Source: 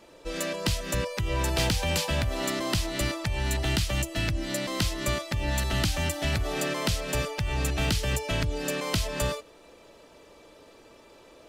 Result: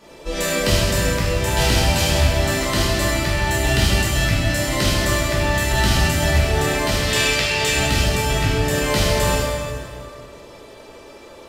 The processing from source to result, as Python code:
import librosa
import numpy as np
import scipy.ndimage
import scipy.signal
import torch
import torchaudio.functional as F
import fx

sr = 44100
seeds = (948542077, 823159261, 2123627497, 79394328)

y = fx.weighting(x, sr, curve='D', at=(7.0, 7.71))
y = fx.rider(y, sr, range_db=4, speed_s=2.0)
y = fx.rev_plate(y, sr, seeds[0], rt60_s=2.2, hf_ratio=0.75, predelay_ms=0, drr_db=-9.0)